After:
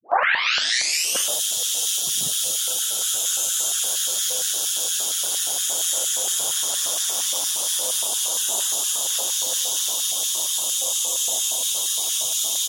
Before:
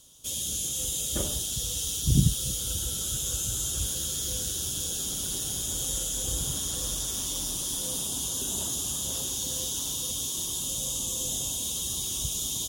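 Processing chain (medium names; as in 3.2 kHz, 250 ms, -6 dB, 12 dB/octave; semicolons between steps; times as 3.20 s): tape start-up on the opening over 1.30 s; LFO high-pass square 4.3 Hz 660–1700 Hz; trim +8 dB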